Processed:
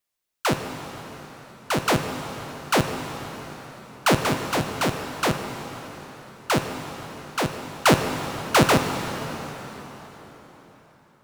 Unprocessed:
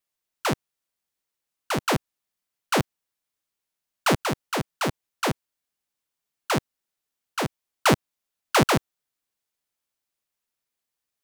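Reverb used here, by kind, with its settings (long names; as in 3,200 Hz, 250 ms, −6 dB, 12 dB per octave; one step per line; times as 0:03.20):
dense smooth reverb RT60 4.4 s, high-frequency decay 0.85×, DRR 5 dB
level +2 dB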